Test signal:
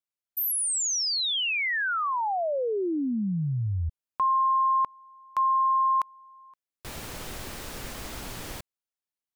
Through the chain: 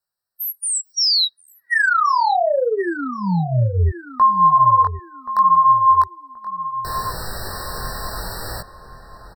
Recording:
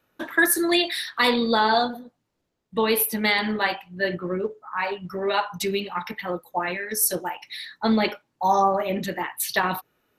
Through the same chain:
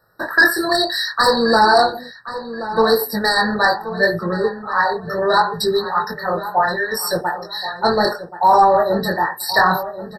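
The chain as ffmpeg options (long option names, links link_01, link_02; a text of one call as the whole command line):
ffmpeg -i in.wav -filter_complex "[0:a]acrossover=split=6600[link_01][link_02];[link_02]acompressor=threshold=-36dB:ratio=4:attack=1:release=60[link_03];[link_01][link_03]amix=inputs=2:normalize=0,equalizer=frequency=270:width=1.7:gain=-12.5,flanger=delay=17.5:depth=7.4:speed=0.69,aeval=exprs='0.282*sin(PI/2*2*val(0)/0.282)':channel_layout=same,asplit=2[link_04][link_05];[link_05]adelay=1078,lowpass=frequency=2000:poles=1,volume=-12dB,asplit=2[link_06][link_07];[link_07]adelay=1078,lowpass=frequency=2000:poles=1,volume=0.34,asplit=2[link_08][link_09];[link_09]adelay=1078,lowpass=frequency=2000:poles=1,volume=0.34[link_10];[link_04][link_06][link_08][link_10]amix=inputs=4:normalize=0,afftfilt=real='re*eq(mod(floor(b*sr/1024/1900),2),0)':imag='im*eq(mod(floor(b*sr/1024/1900),2),0)':win_size=1024:overlap=0.75,volume=4.5dB" out.wav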